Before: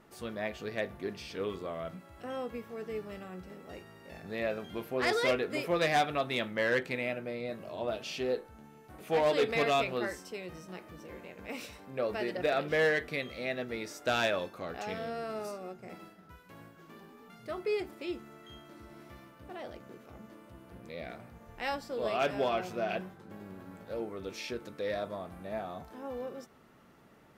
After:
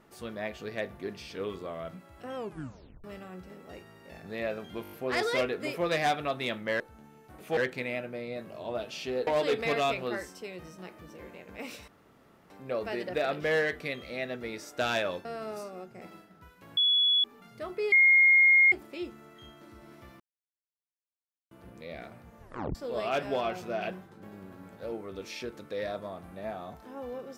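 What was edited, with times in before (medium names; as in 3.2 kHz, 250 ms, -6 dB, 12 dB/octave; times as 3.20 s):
2.36 s: tape stop 0.68 s
4.82 s: stutter 0.02 s, 6 plays
8.40–9.17 s: move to 6.70 s
11.78 s: insert room tone 0.62 s
14.53–15.13 s: delete
16.65–17.12 s: bleep 3.39 kHz -21 dBFS
17.80 s: add tone 2.14 kHz -16.5 dBFS 0.80 s
19.28–20.59 s: mute
21.50 s: tape stop 0.33 s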